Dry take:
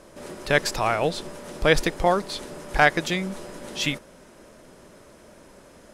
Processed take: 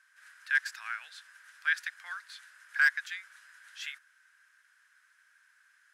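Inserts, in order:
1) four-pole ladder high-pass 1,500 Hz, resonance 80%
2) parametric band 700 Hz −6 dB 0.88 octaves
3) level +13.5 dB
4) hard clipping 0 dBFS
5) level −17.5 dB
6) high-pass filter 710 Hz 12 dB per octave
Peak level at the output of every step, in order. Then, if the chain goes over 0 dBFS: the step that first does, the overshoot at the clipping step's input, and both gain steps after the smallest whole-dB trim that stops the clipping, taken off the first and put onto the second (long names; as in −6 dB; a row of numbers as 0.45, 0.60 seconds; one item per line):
−8.5, −9.0, +4.5, 0.0, −17.5, −14.5 dBFS
step 3, 4.5 dB
step 3 +8.5 dB, step 5 −12.5 dB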